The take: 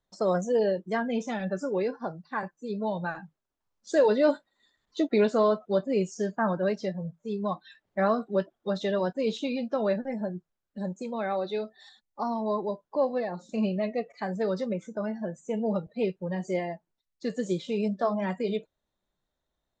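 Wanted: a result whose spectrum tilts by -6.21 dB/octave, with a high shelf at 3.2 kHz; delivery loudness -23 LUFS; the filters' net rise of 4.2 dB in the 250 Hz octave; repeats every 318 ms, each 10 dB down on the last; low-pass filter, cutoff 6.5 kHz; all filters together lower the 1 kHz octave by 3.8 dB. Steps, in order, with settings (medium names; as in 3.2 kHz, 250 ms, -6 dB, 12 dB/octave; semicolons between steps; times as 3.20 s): low-pass 6.5 kHz; peaking EQ 250 Hz +5.5 dB; peaking EQ 1 kHz -6 dB; treble shelf 3.2 kHz +5.5 dB; feedback delay 318 ms, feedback 32%, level -10 dB; trim +4.5 dB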